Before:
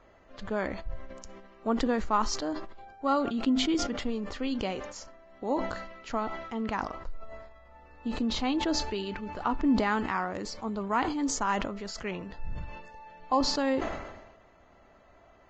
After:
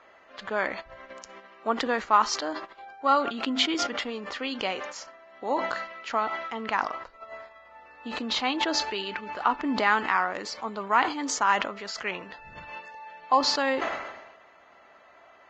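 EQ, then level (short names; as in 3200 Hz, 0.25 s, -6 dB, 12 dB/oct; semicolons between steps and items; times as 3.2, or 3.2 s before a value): band-pass 2000 Hz, Q 0.56; +8.5 dB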